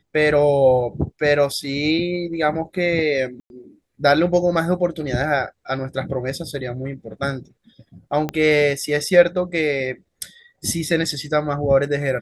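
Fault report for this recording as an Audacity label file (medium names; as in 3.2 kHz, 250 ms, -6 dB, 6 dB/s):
3.400000	3.500000	dropout 101 ms
8.290000	8.290000	pop -11 dBFS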